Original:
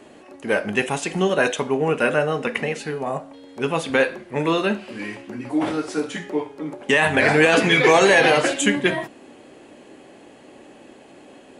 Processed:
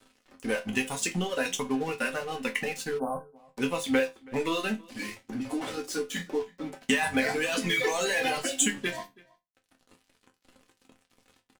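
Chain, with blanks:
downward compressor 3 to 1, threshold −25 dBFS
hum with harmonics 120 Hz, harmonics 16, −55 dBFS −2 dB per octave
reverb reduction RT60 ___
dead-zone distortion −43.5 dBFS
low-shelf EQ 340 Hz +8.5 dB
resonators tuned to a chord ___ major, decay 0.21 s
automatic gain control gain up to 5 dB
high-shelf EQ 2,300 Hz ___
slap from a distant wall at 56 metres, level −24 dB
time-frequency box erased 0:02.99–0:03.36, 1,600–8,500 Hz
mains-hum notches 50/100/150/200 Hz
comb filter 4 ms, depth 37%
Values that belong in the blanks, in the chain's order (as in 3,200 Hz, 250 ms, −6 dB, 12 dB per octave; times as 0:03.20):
1.8 s, F2, +12 dB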